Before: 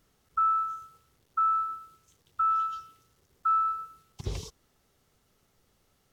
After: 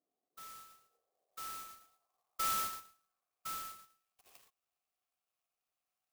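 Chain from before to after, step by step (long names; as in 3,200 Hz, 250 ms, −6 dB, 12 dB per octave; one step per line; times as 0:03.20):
band-pass filter sweep 290 Hz → 3,000 Hz, 0:00.21–0:03.96
formant filter a
converter with an unsteady clock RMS 0.09 ms
level +5.5 dB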